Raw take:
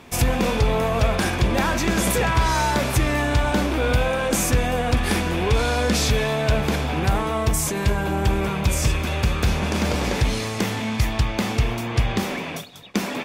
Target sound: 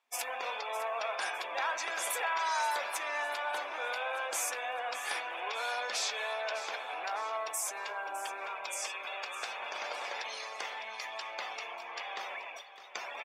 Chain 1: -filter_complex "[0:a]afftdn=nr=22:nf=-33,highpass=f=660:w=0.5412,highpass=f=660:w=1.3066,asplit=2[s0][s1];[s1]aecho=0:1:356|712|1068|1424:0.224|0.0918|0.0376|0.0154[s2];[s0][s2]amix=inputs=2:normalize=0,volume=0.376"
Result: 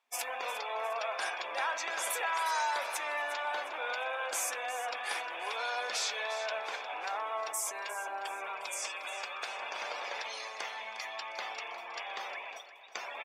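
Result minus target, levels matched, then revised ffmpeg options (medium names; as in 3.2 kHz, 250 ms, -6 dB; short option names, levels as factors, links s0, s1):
echo 252 ms early
-filter_complex "[0:a]afftdn=nr=22:nf=-33,highpass=f=660:w=0.5412,highpass=f=660:w=1.3066,asplit=2[s0][s1];[s1]aecho=0:1:608|1216|1824|2432:0.224|0.0918|0.0376|0.0154[s2];[s0][s2]amix=inputs=2:normalize=0,volume=0.376"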